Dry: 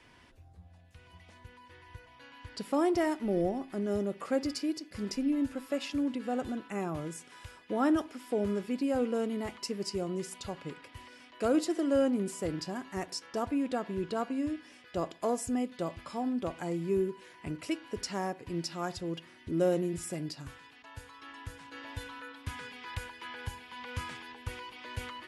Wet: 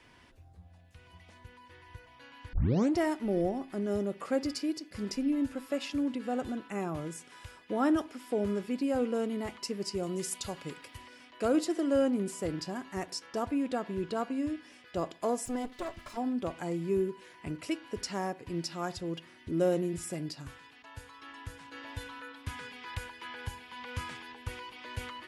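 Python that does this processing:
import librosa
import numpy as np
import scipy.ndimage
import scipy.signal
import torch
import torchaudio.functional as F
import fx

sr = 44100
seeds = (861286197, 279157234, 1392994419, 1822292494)

y = fx.high_shelf(x, sr, hz=4700.0, db=11.0, at=(10.03, 10.97))
y = fx.lower_of_two(y, sr, delay_ms=3.0, at=(15.45, 16.16), fade=0.02)
y = fx.edit(y, sr, fx.tape_start(start_s=2.53, length_s=0.44), tone=tone)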